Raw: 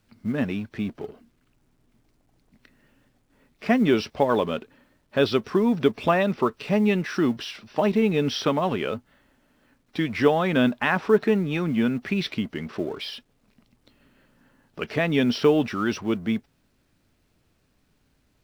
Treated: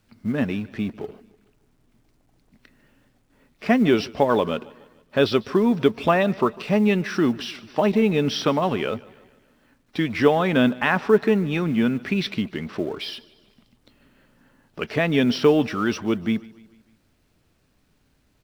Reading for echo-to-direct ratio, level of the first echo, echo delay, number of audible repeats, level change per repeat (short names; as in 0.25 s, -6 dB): -20.5 dB, -22.0 dB, 0.149 s, 3, -6.0 dB